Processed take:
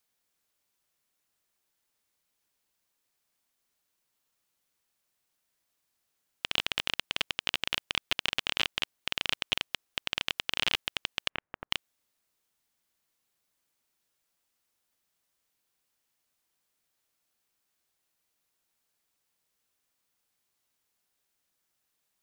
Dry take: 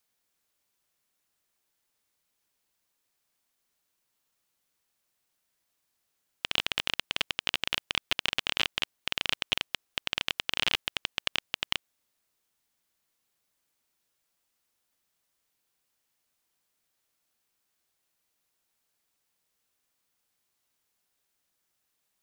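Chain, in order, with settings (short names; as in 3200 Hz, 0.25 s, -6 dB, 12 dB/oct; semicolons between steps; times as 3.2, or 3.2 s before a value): 11.28–11.7 LPF 2600 Hz -> 1300 Hz 24 dB/oct; gain -1 dB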